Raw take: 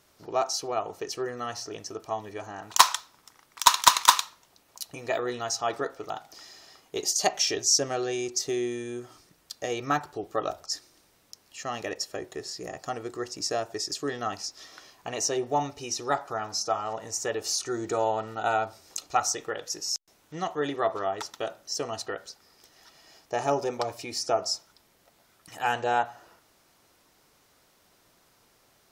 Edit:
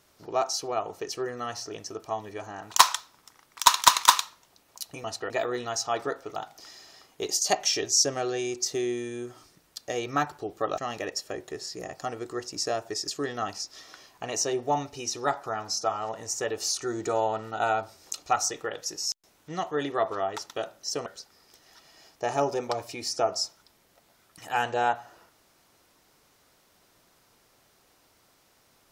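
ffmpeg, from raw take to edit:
-filter_complex "[0:a]asplit=5[a][b][c][d][e];[a]atrim=end=5.042[f];[b]atrim=start=21.898:end=22.162[g];[c]atrim=start=5.038:end=10.522[h];[d]atrim=start=11.618:end=21.902[i];[e]atrim=start=22.158[j];[f][g]acrossfade=d=0.004:c1=hsin:c2=hsin[k];[k][h]acrossfade=d=0.004:c1=hsin:c2=hsin[l];[l][i]acrossfade=d=0.004:c1=hsin:c2=hsin[m];[m][j]acrossfade=d=0.004:c1=hsin:c2=hsin"

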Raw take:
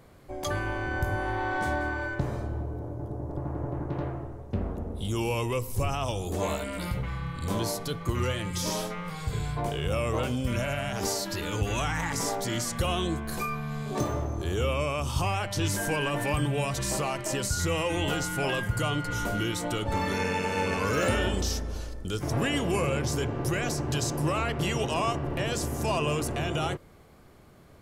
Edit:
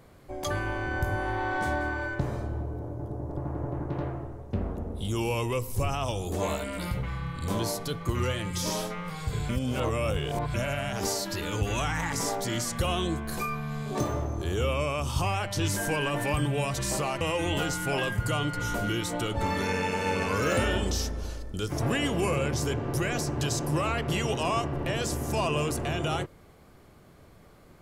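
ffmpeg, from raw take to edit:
-filter_complex "[0:a]asplit=4[a][b][c][d];[a]atrim=end=9.492[e];[b]atrim=start=9.488:end=10.542,asetpts=PTS-STARTPTS,areverse[f];[c]atrim=start=10.538:end=17.212[g];[d]atrim=start=17.718[h];[e][f]acrossfade=d=0.004:c1=hsin:c2=hsin[i];[i][g]acrossfade=d=0.004:c1=hsin:c2=hsin[j];[j][h]acrossfade=d=0.004:c1=hsin:c2=hsin"

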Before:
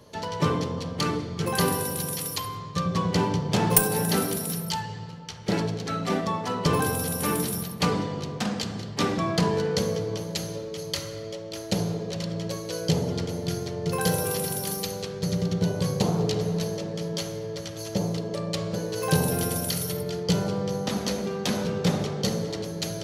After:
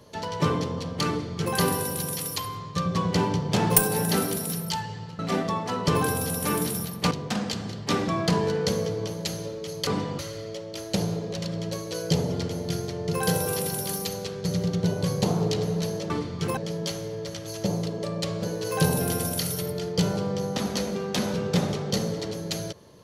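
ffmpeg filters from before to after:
-filter_complex "[0:a]asplit=7[a][b][c][d][e][f][g];[a]atrim=end=5.192[h];[b]atrim=start=5.968:end=7.892[i];[c]atrim=start=8.208:end=10.972[j];[d]atrim=start=7.888:end=8.212[k];[e]atrim=start=10.968:end=16.882[l];[f]atrim=start=1.078:end=1.552[m];[g]atrim=start=16.878[n];[h][i]acrossfade=d=0.004:c1=hsin:c2=hsin[o];[o][j]acrossfade=d=0.004:c1=hsin:c2=hsin[p];[p][k]acrossfade=d=0.004:c1=hsin:c2=hsin[q];[q][l]acrossfade=d=0.004:c1=hsin:c2=hsin[r];[r][m]acrossfade=d=0.004:c1=hsin:c2=hsin[s];[s][n]acrossfade=d=0.004:c1=hsin:c2=hsin"

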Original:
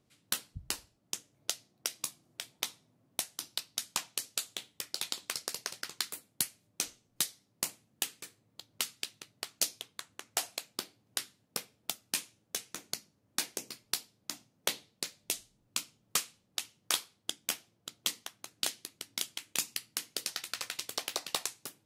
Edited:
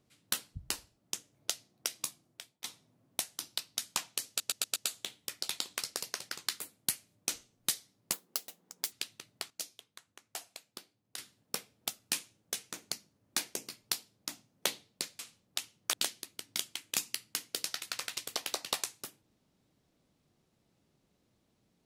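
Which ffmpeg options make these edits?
-filter_complex "[0:a]asplit=12[a][b][c][d][e][f][g][h][i][j][k][l];[a]atrim=end=2.64,asetpts=PTS-STARTPTS,afade=t=out:st=2.08:d=0.56:silence=0.0841395[m];[b]atrim=start=2.64:end=4.402,asetpts=PTS-STARTPTS,afade=t=in:d=0.004:c=hsin:silence=0.0841395[n];[c]atrim=start=4.278:end=4.402[o];[d]atrim=start=4.278:end=4.402[p];[e]atrim=start=4.278:end=4.402[q];[f]atrim=start=4.278:end=7.654[r];[g]atrim=start=7.65:end=8.94,asetpts=PTS-STARTPTS,asetrate=71883,aresample=44100,atrim=end_sample=34901,asetpts=PTS-STARTPTS[s];[h]atrim=start=8.936:end=9.522[t];[i]atrim=start=9.518:end=11.202,asetpts=PTS-STARTPTS,volume=-10dB[u];[j]atrim=start=11.198:end=15.212[v];[k]atrim=start=16.198:end=16.942[w];[l]atrim=start=18.548[x];[m][n]concat=n=2:v=0:a=1[y];[y][o]acrossfade=d=0.004:c1=hsin:c2=hsin[z];[z][p]acrossfade=d=0.004:c1=hsin:c2=hsin[aa];[aa][q]acrossfade=d=0.004:c1=hsin:c2=hsin[ab];[ab][r]acrossfade=d=0.004:c1=hsin:c2=hsin[ac];[ac][s]acrossfade=d=0.004:c1=hsin:c2=hsin[ad];[ad][t]acrossfade=d=0.004:c1=hsin:c2=hsin[ae];[ae][u]acrossfade=d=0.004:c1=hsin:c2=hsin[af];[af][v]acrossfade=d=0.004:c1=hsin:c2=hsin[ag];[ag][w]acrossfade=d=0.004:c1=hsin:c2=hsin[ah];[ah][x]acrossfade=d=0.004:c1=hsin:c2=hsin"

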